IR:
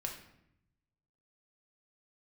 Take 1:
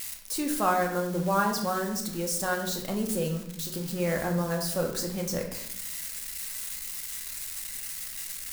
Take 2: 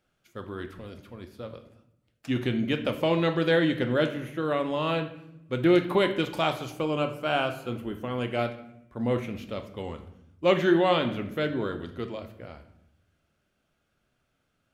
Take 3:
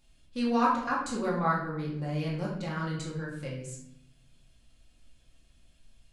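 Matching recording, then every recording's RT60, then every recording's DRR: 1; 0.75 s, 0.80 s, 0.75 s; 1.0 dB, 6.0 dB, -5.0 dB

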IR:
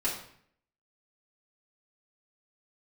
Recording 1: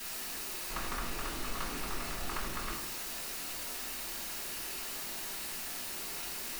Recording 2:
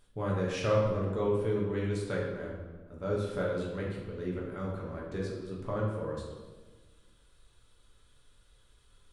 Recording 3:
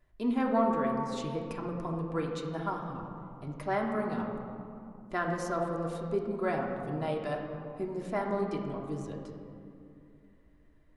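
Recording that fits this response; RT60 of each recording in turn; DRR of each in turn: 1; 0.60 s, 1.4 s, 2.6 s; -7.5 dB, -4.0 dB, -1.0 dB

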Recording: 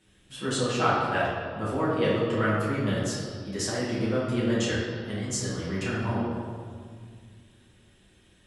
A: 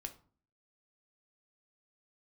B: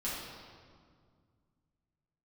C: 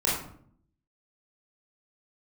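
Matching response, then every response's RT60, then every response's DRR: B; 0.45 s, 2.0 s, 0.60 s; 5.0 dB, -9.0 dB, -7.5 dB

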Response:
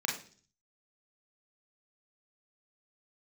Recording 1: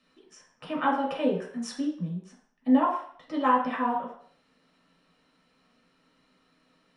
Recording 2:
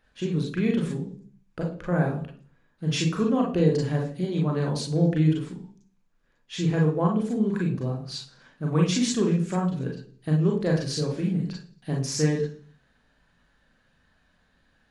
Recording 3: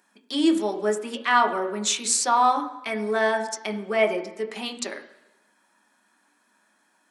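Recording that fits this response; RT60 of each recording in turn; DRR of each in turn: 2; 0.60 s, 0.45 s, 1.0 s; -3.5 dB, -1.5 dB, 3.5 dB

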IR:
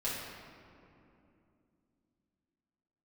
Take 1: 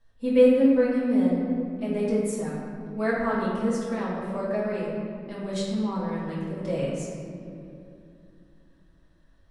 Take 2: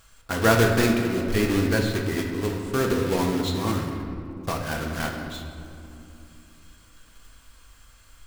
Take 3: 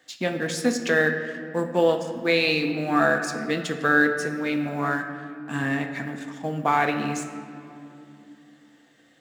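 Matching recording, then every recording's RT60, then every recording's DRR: 1; 2.8 s, 2.8 s, 2.9 s; -9.0 dB, 0.5 dB, 5.0 dB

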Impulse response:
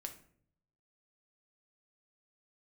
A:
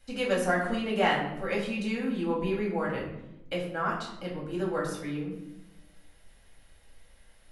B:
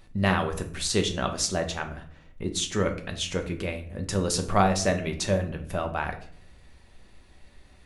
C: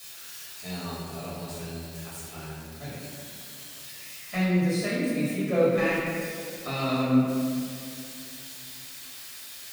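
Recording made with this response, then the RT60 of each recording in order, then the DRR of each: B; 0.90 s, 0.60 s, 2.4 s; -4.0 dB, 4.5 dB, -9.5 dB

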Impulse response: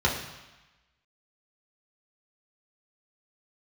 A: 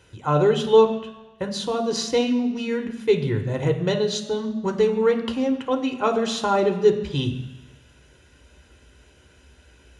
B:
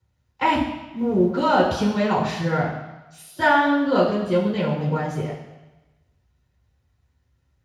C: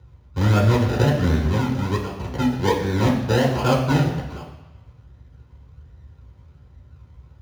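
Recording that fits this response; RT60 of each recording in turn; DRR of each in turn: C; 1.1 s, 1.1 s, 1.1 s; 3.5 dB, -8.5 dB, -3.5 dB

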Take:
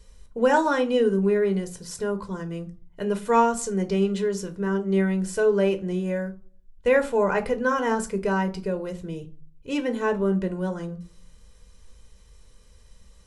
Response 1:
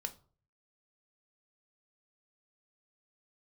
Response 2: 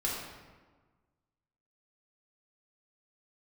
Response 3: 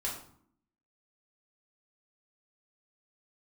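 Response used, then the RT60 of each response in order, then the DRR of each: 1; no single decay rate, 1.4 s, 0.60 s; 7.0 dB, -5.0 dB, -5.0 dB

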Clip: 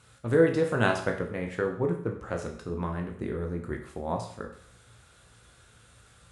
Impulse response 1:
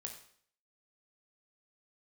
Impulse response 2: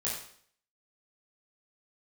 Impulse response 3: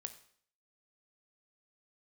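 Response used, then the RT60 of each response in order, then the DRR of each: 1; 0.55 s, 0.55 s, 0.55 s; 2.0 dB, -7.5 dB, 8.5 dB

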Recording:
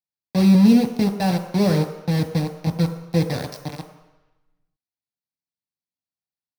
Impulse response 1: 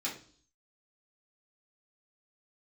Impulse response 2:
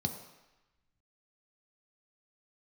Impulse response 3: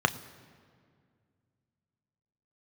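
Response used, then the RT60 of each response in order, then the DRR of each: 2; 0.45 s, 1.0 s, 2.1 s; -6.5 dB, 4.5 dB, 9.5 dB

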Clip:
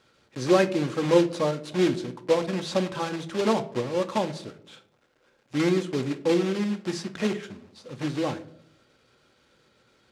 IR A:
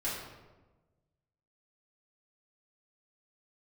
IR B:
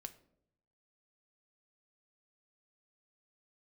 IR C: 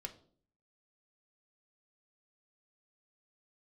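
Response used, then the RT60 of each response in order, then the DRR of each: B; 1.2 s, 0.75 s, 0.50 s; -9.0 dB, 7.5 dB, 3.5 dB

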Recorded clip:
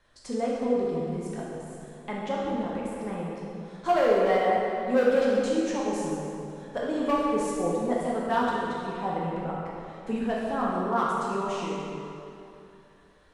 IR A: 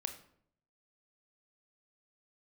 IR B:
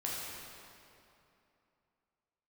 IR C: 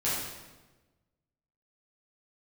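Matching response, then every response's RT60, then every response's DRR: B; 0.65 s, 2.8 s, 1.2 s; 6.5 dB, -5.5 dB, -10.0 dB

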